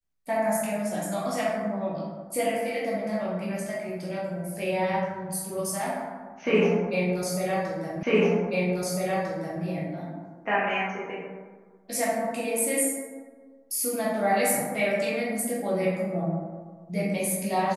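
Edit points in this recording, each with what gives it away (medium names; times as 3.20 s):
8.03 s: repeat of the last 1.6 s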